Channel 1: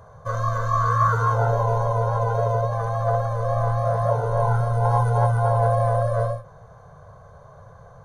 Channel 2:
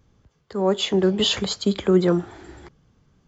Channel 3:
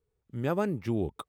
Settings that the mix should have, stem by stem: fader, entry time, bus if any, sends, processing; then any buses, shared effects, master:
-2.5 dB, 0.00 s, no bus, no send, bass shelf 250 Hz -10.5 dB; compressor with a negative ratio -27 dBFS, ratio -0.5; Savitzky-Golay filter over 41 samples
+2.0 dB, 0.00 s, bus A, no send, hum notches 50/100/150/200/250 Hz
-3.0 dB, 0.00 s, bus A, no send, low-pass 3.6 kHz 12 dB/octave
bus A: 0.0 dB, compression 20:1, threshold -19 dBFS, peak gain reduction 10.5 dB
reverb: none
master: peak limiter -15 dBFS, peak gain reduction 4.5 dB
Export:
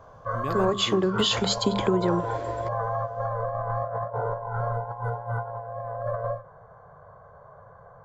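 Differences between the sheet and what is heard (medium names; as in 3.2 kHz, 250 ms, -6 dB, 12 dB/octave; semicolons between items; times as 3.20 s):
stem 3: missing low-pass 3.6 kHz 12 dB/octave; master: missing peak limiter -15 dBFS, peak gain reduction 4.5 dB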